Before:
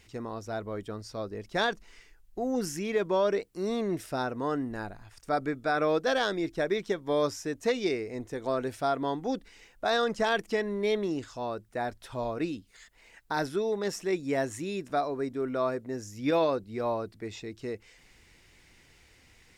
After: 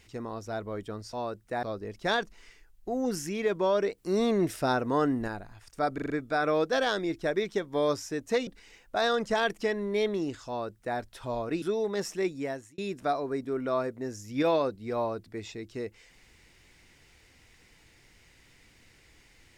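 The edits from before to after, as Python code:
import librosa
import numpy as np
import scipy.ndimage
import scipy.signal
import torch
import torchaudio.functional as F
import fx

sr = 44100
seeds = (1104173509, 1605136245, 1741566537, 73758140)

y = fx.edit(x, sr, fx.clip_gain(start_s=3.48, length_s=1.3, db=4.5),
    fx.stutter(start_s=5.44, slice_s=0.04, count=5),
    fx.cut(start_s=7.81, length_s=1.55),
    fx.duplicate(start_s=11.37, length_s=0.5, to_s=1.13),
    fx.cut(start_s=12.51, length_s=0.99),
    fx.fade_out_span(start_s=14.11, length_s=0.55), tone=tone)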